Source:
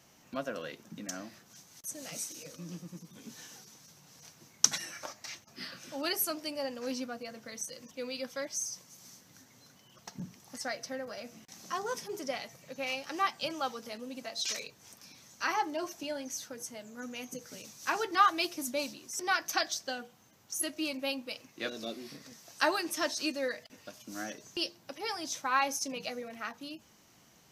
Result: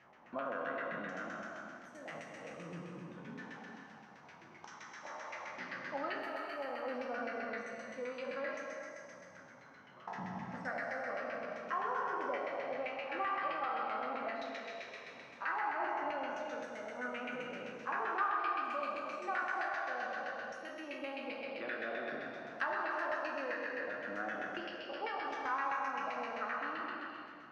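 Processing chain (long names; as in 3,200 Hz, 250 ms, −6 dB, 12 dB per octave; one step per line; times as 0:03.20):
peak hold with a decay on every bin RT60 1.85 s
low-shelf EQ 190 Hz −10.5 dB
downward compressor 6 to 1, threshold −37 dBFS, peak gain reduction 20 dB
auto-filter low-pass saw down 7.7 Hz 750–2,200 Hz
reverb whose tail is shaped and stops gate 450 ms flat, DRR 2.5 dB
level −2 dB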